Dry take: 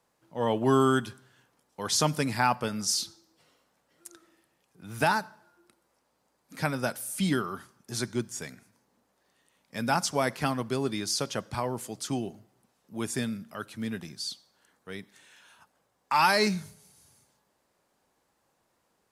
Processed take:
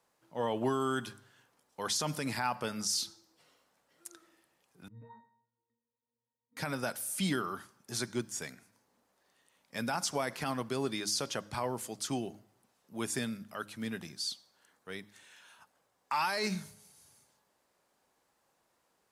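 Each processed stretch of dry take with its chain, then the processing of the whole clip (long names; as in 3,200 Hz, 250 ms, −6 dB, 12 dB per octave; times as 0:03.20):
0:04.88–0:06.57: high-frequency loss of the air 420 metres + downward compressor 5 to 1, threshold −32 dBFS + resonances in every octave A#, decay 0.37 s
whole clip: low-shelf EQ 310 Hz −5.5 dB; hum removal 103.2 Hz, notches 3; brickwall limiter −21 dBFS; level −1 dB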